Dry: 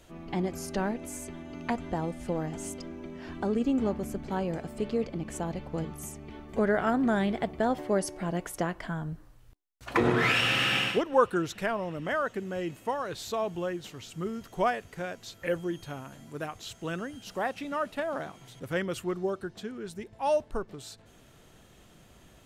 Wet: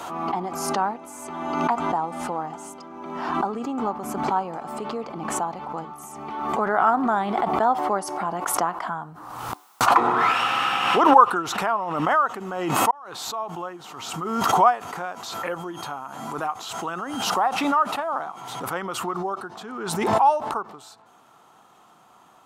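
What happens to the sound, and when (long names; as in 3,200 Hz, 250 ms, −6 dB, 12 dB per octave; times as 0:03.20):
0:12.91–0:13.99: fade in
whole clip: high-pass filter 210 Hz 12 dB per octave; flat-topped bell 1,000 Hz +15 dB 1.1 octaves; background raised ahead of every attack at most 37 dB per second; level −2 dB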